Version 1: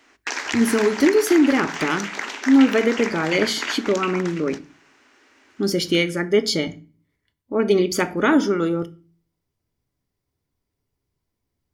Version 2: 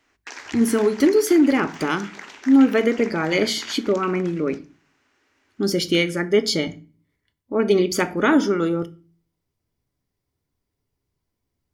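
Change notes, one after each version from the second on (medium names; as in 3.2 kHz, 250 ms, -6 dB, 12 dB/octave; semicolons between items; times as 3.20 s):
background -10.0 dB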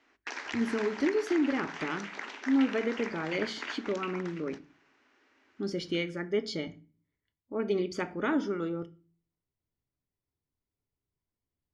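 speech -11.5 dB; master: add distance through air 110 m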